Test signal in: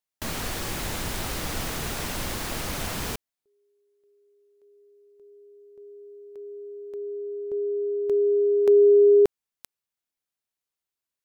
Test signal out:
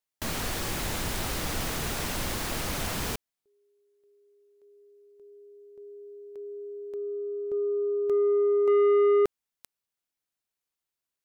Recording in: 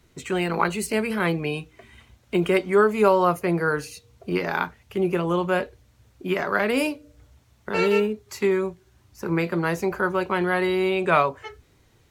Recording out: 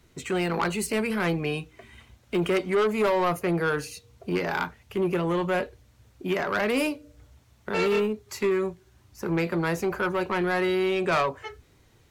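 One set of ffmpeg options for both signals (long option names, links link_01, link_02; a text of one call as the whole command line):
ffmpeg -i in.wav -af "asoftclip=type=tanh:threshold=-18.5dB" out.wav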